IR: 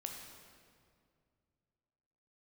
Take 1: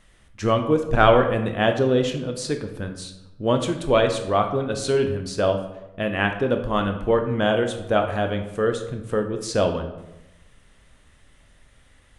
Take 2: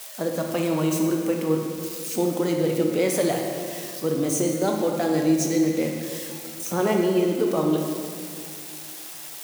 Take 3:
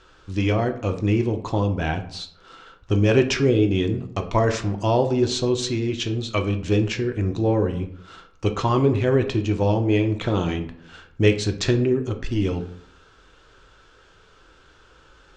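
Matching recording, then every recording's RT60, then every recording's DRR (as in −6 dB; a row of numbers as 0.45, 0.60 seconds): 2; 0.95, 2.2, 0.65 seconds; 5.5, 1.5, 5.5 decibels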